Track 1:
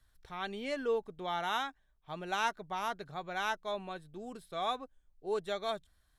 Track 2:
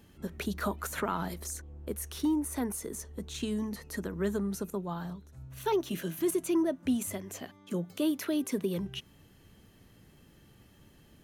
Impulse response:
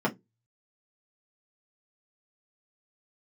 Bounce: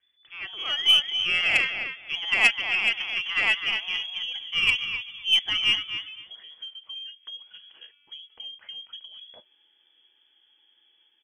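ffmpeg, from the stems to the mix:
-filter_complex "[0:a]bandreject=frequency=244.2:width_type=h:width=4,bandreject=frequency=488.4:width_type=h:width=4,bandreject=frequency=732.6:width_type=h:width=4,bandreject=frequency=976.8:width_type=h:width=4,bandreject=frequency=1221:width_type=h:width=4,bandreject=frequency=1465.2:width_type=h:width=4,bandreject=frequency=1709.4:width_type=h:width=4,bandreject=frequency=1953.6:width_type=h:width=4,bandreject=frequency=2197.8:width_type=h:width=4,volume=1.5dB,asplit=4[link_01][link_02][link_03][link_04];[link_02]volume=-21.5dB[link_05];[link_03]volume=-6.5dB[link_06];[1:a]acompressor=threshold=-36dB:ratio=5,adelay=400,volume=-17dB,asplit=2[link_07][link_08];[link_08]volume=-13.5dB[link_09];[link_04]apad=whole_len=513108[link_10];[link_07][link_10]sidechaincompress=threshold=-47dB:ratio=8:attack=16:release=537[link_11];[2:a]atrim=start_sample=2205[link_12];[link_05][link_09]amix=inputs=2:normalize=0[link_13];[link_13][link_12]afir=irnorm=-1:irlink=0[link_14];[link_06]aecho=0:1:257|514|771:1|0.18|0.0324[link_15];[link_01][link_11][link_14][link_15]amix=inputs=4:normalize=0,dynaudnorm=framelen=190:gausssize=7:maxgain=11dB,lowpass=frequency=3000:width_type=q:width=0.5098,lowpass=frequency=3000:width_type=q:width=0.6013,lowpass=frequency=3000:width_type=q:width=0.9,lowpass=frequency=3000:width_type=q:width=2.563,afreqshift=-3500,aeval=exprs='0.631*(cos(1*acos(clip(val(0)/0.631,-1,1)))-cos(1*PI/2))+0.158*(cos(2*acos(clip(val(0)/0.631,-1,1)))-cos(2*PI/2))+0.0631*(cos(3*acos(clip(val(0)/0.631,-1,1)))-cos(3*PI/2))+0.0631*(cos(4*acos(clip(val(0)/0.631,-1,1)))-cos(4*PI/2))':channel_layout=same"

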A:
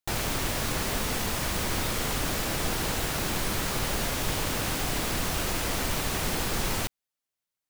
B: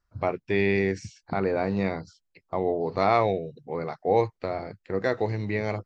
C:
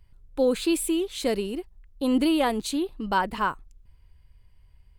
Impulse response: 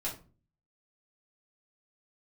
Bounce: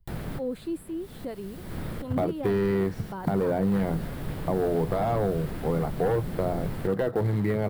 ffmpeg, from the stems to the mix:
-filter_complex "[0:a]equalizer=frequency=1000:width=0.89:gain=-7.5,volume=-3dB[link_01];[1:a]aeval=exprs='0.316*(cos(1*acos(clip(val(0)/0.316,-1,1)))-cos(1*PI/2))+0.141*(cos(5*acos(clip(val(0)/0.316,-1,1)))-cos(5*PI/2))':channel_layout=same,acrusher=bits=3:mode=log:mix=0:aa=0.000001,adelay=1950,volume=-5dB[link_02];[2:a]acrossover=split=550[link_03][link_04];[link_03]aeval=exprs='val(0)*(1-0.7/2+0.7/2*cos(2*PI*4.1*n/s))':channel_layout=same[link_05];[link_04]aeval=exprs='val(0)*(1-0.7/2-0.7/2*cos(2*PI*4.1*n/s))':channel_layout=same[link_06];[link_05][link_06]amix=inputs=2:normalize=0,volume=-7dB,asplit=2[link_07][link_08];[link_08]apad=whole_len=339527[link_09];[link_01][link_09]sidechaincompress=threshold=-49dB:ratio=6:attack=5.2:release=274[link_10];[link_10][link_02][link_07]amix=inputs=3:normalize=0,equalizer=frequency=160:width_type=o:width=0.67:gain=7,equalizer=frequency=2500:width_type=o:width=0.67:gain=-6,equalizer=frequency=6300:width_type=o:width=0.67:gain=-10,acrossover=split=720|2300[link_11][link_12][link_13];[link_11]acompressor=threshold=-22dB:ratio=4[link_14];[link_12]acompressor=threshold=-38dB:ratio=4[link_15];[link_13]acompressor=threshold=-53dB:ratio=4[link_16];[link_14][link_15][link_16]amix=inputs=3:normalize=0"

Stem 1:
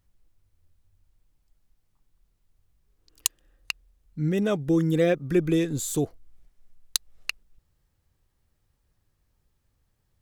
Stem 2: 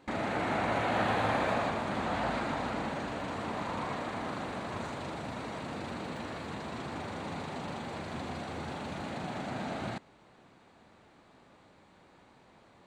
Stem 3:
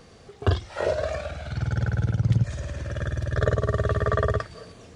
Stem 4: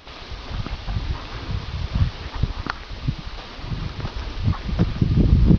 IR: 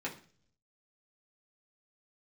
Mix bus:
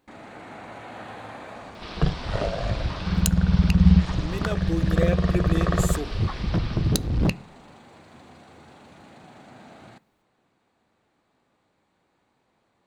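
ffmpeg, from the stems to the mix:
-filter_complex "[0:a]lowshelf=frequency=360:gain=-11,volume=-3.5dB,asplit=3[link_01][link_02][link_03];[link_02]volume=-12dB[link_04];[1:a]highshelf=frequency=7700:gain=6.5,volume=-11dB,asplit=2[link_05][link_06];[link_06]volume=-17.5dB[link_07];[2:a]equalizer=frequency=130:width=3.5:gain=15,aeval=exprs='val(0)*sin(2*PI*53*n/s)':channel_layout=same,adelay=1550,volume=-1dB[link_08];[3:a]asoftclip=type=hard:threshold=-16dB,adelay=1750,volume=-1.5dB,asplit=2[link_09][link_10];[link_10]volume=-17.5dB[link_11];[link_03]apad=whole_len=323327[link_12];[link_09][link_12]sidechaincompress=threshold=-30dB:ratio=8:attack=5.8:release=280[link_13];[4:a]atrim=start_sample=2205[link_14];[link_04][link_07][link_11]amix=inputs=3:normalize=0[link_15];[link_15][link_14]afir=irnorm=-1:irlink=0[link_16];[link_01][link_05][link_08][link_13][link_16]amix=inputs=5:normalize=0"

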